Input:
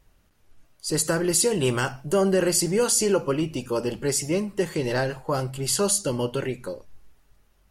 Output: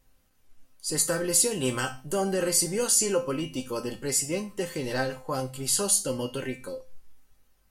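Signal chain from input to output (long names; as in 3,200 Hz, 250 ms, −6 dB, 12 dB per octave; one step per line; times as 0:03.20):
high-shelf EQ 5,800 Hz +7 dB
tuned comb filter 260 Hz, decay 0.28 s, harmonics all, mix 80%
level +5.5 dB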